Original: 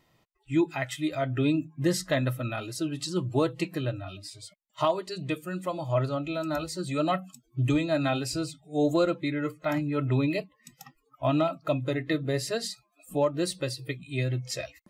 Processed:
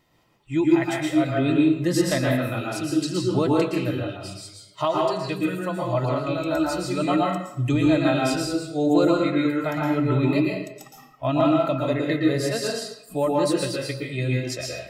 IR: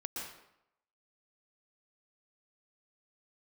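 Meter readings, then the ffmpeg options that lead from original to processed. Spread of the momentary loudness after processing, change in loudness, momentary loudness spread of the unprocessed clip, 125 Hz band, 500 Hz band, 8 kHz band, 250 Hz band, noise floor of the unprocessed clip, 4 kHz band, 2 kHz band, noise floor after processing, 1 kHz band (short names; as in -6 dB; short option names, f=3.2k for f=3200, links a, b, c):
9 LU, +6.0 dB, 8 LU, +3.5 dB, +5.5 dB, +4.0 dB, +7.5 dB, -71 dBFS, +4.5 dB, +5.5 dB, -50 dBFS, +6.0 dB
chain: -filter_complex "[1:a]atrim=start_sample=2205[a];[0:a][a]afir=irnorm=-1:irlink=0,volume=5dB"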